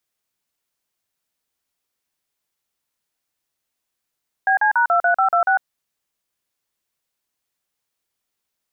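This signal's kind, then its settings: DTMF "BC#23526", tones 0.102 s, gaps 41 ms, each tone -16 dBFS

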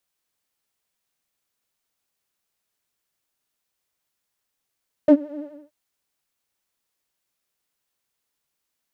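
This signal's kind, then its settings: synth patch with vibrato D5, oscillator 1 triangle, interval -12 st, detune 28 cents, oscillator 2 level -7 dB, sub -11.5 dB, noise -30 dB, filter bandpass, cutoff 130 Hz, Q 4.2, filter envelope 1.5 oct, filter decay 0.10 s, attack 1.5 ms, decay 0.08 s, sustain -20 dB, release 0.31 s, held 0.32 s, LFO 12 Hz, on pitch 64 cents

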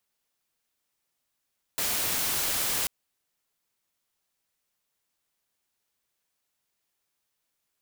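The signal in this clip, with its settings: noise white, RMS -28 dBFS 1.09 s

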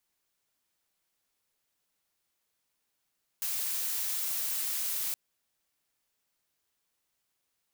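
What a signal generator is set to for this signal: noise blue, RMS -32.5 dBFS 1.72 s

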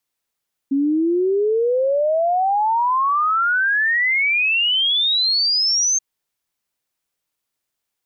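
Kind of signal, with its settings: log sweep 270 Hz -> 6400 Hz 5.28 s -15 dBFS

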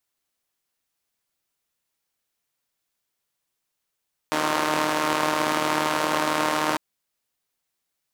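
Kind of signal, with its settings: four-cylinder engine model, steady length 2.45 s, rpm 4600, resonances 330/590/940 Hz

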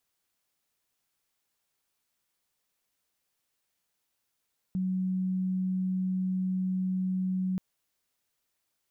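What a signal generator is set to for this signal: tone sine 186 Hz -26.5 dBFS 2.83 s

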